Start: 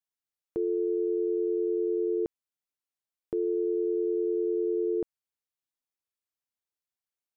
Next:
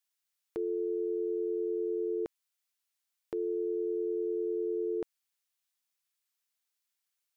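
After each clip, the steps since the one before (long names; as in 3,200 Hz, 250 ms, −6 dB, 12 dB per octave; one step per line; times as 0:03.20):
tilt shelving filter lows −9 dB, about 740 Hz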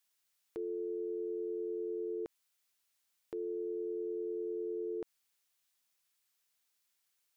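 brickwall limiter −37.5 dBFS, peak gain reduction 11 dB
level +5 dB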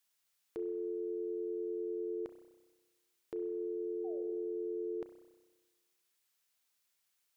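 sound drawn into the spectrogram fall, 0:04.04–0:04.35, 340–790 Hz −52 dBFS
on a send at −8.5 dB: convolution reverb RT60 1.3 s, pre-delay 31 ms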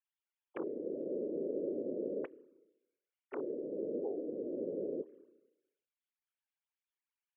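three sine waves on the formant tracks
random phases in short frames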